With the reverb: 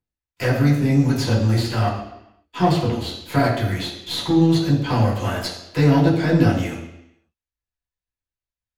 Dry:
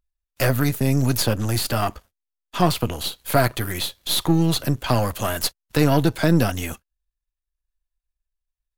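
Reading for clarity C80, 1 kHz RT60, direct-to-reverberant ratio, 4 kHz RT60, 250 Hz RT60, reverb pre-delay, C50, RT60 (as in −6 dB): 7.0 dB, 0.85 s, −7.5 dB, 0.85 s, 0.85 s, 3 ms, 5.0 dB, 0.85 s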